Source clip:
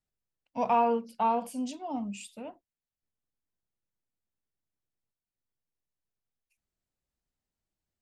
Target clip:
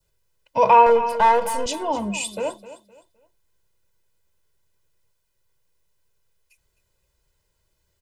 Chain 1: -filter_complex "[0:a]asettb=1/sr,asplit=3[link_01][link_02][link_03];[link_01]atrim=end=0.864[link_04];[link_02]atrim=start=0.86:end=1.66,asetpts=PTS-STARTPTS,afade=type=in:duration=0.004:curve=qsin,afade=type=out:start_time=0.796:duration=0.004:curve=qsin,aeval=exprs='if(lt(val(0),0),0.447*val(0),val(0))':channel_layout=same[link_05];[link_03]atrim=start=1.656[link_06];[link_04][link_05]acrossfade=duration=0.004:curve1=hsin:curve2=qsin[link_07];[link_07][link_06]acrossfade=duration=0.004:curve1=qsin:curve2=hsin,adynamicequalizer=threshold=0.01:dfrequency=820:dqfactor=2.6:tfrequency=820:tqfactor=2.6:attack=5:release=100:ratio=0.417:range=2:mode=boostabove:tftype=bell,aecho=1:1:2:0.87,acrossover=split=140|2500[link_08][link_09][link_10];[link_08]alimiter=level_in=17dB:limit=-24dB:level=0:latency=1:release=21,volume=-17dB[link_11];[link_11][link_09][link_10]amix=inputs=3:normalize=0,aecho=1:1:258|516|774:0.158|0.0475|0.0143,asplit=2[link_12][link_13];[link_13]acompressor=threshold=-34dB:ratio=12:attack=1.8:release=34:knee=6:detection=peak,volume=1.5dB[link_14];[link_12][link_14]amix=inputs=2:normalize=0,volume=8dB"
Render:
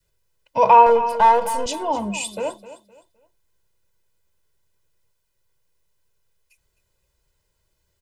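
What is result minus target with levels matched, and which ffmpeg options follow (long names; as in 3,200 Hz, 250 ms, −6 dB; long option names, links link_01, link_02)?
2,000 Hz band −3.0 dB
-filter_complex "[0:a]asettb=1/sr,asplit=3[link_01][link_02][link_03];[link_01]atrim=end=0.864[link_04];[link_02]atrim=start=0.86:end=1.66,asetpts=PTS-STARTPTS,afade=type=in:duration=0.004:curve=qsin,afade=type=out:start_time=0.796:duration=0.004:curve=qsin,aeval=exprs='if(lt(val(0),0),0.447*val(0),val(0))':channel_layout=same[link_05];[link_03]atrim=start=1.656[link_06];[link_04][link_05]acrossfade=duration=0.004:curve1=hsin:curve2=qsin[link_07];[link_07][link_06]acrossfade=duration=0.004:curve1=qsin:curve2=hsin,adynamicequalizer=threshold=0.01:dfrequency=2000:dqfactor=2.6:tfrequency=2000:tqfactor=2.6:attack=5:release=100:ratio=0.417:range=2:mode=boostabove:tftype=bell,aecho=1:1:2:0.87,acrossover=split=140|2500[link_08][link_09][link_10];[link_08]alimiter=level_in=17dB:limit=-24dB:level=0:latency=1:release=21,volume=-17dB[link_11];[link_11][link_09][link_10]amix=inputs=3:normalize=0,aecho=1:1:258|516|774:0.158|0.0475|0.0143,asplit=2[link_12][link_13];[link_13]acompressor=threshold=-34dB:ratio=12:attack=1.8:release=34:knee=6:detection=peak,volume=1.5dB[link_14];[link_12][link_14]amix=inputs=2:normalize=0,volume=8dB"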